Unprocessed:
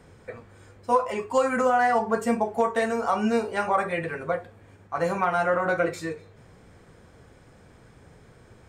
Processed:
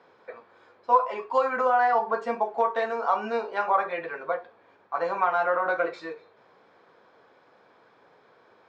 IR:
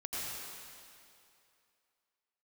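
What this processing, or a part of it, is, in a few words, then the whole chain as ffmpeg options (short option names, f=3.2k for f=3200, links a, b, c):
phone earpiece: -af "highpass=480,equalizer=f=1k:t=q:w=4:g=4,equalizer=f=2k:t=q:w=4:g=-5,equalizer=f=2.9k:t=q:w=4:g=-5,lowpass=f=4.2k:w=0.5412,lowpass=f=4.2k:w=1.3066"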